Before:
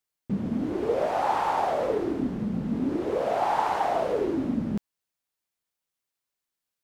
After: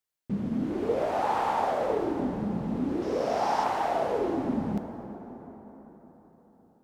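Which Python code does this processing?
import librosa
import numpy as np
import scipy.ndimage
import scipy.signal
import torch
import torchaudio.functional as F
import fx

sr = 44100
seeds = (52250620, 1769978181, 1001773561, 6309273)

y = fx.peak_eq(x, sr, hz=5400.0, db=12.0, octaves=0.49, at=(3.02, 3.64))
y = fx.rev_plate(y, sr, seeds[0], rt60_s=4.6, hf_ratio=0.5, predelay_ms=0, drr_db=7.0)
y = y * librosa.db_to_amplitude(-2.5)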